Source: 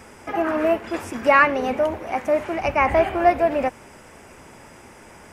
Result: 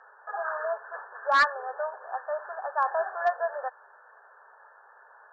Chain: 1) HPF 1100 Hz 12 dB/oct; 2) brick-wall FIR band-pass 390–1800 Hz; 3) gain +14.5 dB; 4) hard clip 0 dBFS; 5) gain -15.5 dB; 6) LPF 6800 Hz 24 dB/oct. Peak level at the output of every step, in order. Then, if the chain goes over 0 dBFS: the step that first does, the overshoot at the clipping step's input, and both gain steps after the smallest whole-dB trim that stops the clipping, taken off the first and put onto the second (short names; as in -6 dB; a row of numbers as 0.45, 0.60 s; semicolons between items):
-5.0, -6.0, +8.5, 0.0, -15.5, -14.5 dBFS; step 3, 8.5 dB; step 3 +5.5 dB, step 5 -6.5 dB